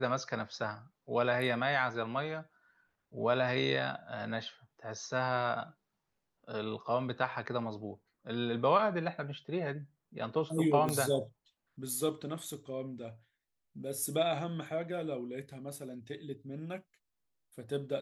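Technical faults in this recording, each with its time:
10.89 s: pop -20 dBFS

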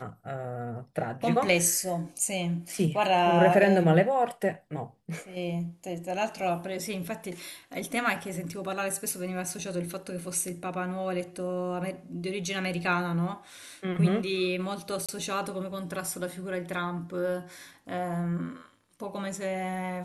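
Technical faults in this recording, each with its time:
15.06–15.09 s: dropout 26 ms

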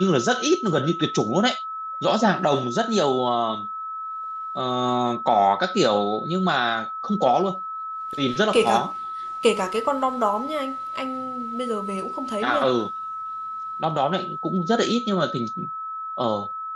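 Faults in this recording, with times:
whine 1.3 kHz -29 dBFS

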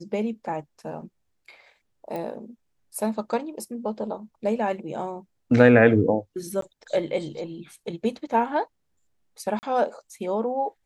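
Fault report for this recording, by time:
2.16 s: pop -21 dBFS
6.61–6.62 s: dropout 13 ms
9.59–9.63 s: dropout 39 ms

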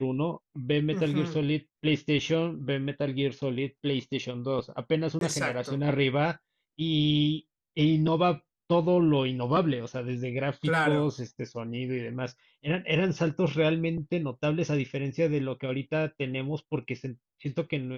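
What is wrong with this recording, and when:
5.19–5.21 s: dropout 22 ms

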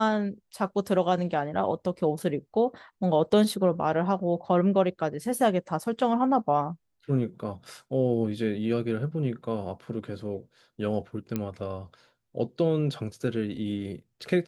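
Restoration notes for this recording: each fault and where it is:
11.36 s: pop -16 dBFS

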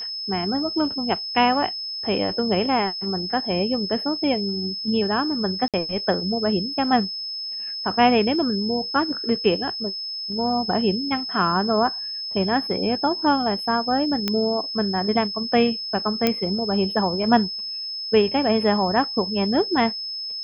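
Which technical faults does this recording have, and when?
whine 5.2 kHz -28 dBFS
5.68–5.74 s: dropout 57 ms
14.28 s: pop -8 dBFS
16.27 s: pop -5 dBFS

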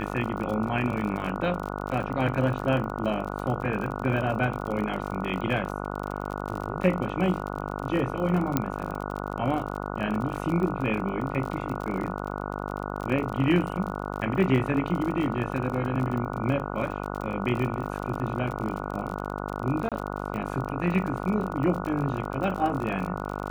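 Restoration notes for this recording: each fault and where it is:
buzz 50 Hz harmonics 29 -33 dBFS
crackle 43 per s -32 dBFS
8.57 s: pop -9 dBFS
19.89–19.92 s: dropout 27 ms

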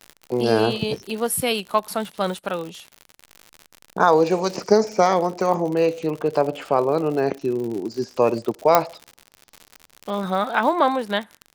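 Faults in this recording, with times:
crackle 85 per s -28 dBFS
8.75 s: pop 0 dBFS

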